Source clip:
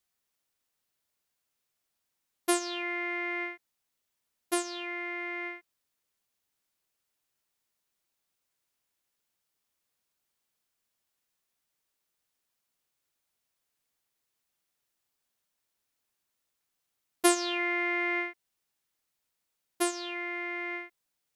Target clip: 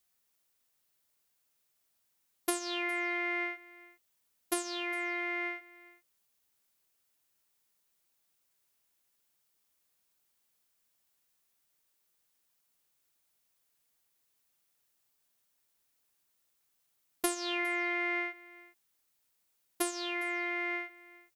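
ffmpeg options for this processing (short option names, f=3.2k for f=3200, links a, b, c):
-af "highshelf=f=8.8k:g=6.5,acompressor=threshold=-30dB:ratio=8,aecho=1:1:408:0.0891,volume=1.5dB"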